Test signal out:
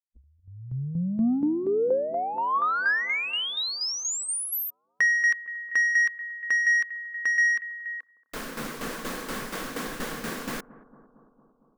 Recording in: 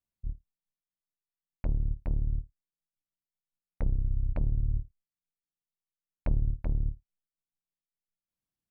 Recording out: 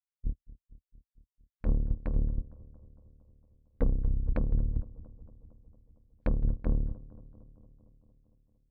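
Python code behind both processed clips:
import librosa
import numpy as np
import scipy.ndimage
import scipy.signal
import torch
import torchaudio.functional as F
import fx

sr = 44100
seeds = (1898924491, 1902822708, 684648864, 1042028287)

p1 = fx.noise_reduce_blind(x, sr, reduce_db=30)
p2 = fx.graphic_eq_15(p1, sr, hz=(100, 250, 1600), db=(-4, 10, 8))
p3 = fx.rider(p2, sr, range_db=4, speed_s=0.5)
p4 = p2 + (p3 * librosa.db_to_amplitude(-1.0))
p5 = 10.0 ** (-15.0 / 20.0) * np.tanh(p4 / 10.0 ** (-15.0 / 20.0))
p6 = fx.small_body(p5, sr, hz=(480.0, 1100.0), ring_ms=35, db=9)
p7 = fx.tremolo_shape(p6, sr, shape='saw_down', hz=4.2, depth_pct=65)
y = p7 + fx.echo_bbd(p7, sr, ms=228, stages=2048, feedback_pct=68, wet_db=-18.5, dry=0)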